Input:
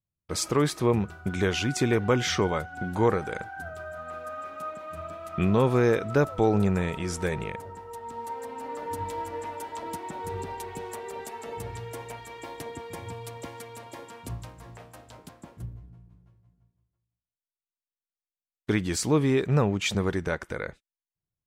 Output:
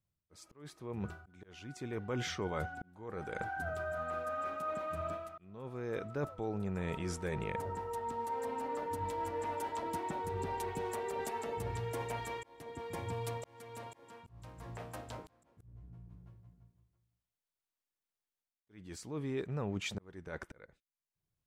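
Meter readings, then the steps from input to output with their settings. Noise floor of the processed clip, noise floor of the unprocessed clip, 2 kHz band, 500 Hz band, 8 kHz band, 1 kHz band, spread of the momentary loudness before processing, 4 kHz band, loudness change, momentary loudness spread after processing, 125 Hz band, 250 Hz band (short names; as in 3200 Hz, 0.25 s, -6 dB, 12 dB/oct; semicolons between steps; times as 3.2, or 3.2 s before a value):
under -85 dBFS, under -85 dBFS, -10.0 dB, -11.0 dB, -13.5 dB, -6.0 dB, 18 LU, -13.0 dB, -11.5 dB, 16 LU, -13.0 dB, -14.5 dB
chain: high shelf 2200 Hz -4 dB; reverse; compressor 8:1, threshold -38 dBFS, peak gain reduction 20 dB; reverse; auto swell 0.674 s; gain +3.5 dB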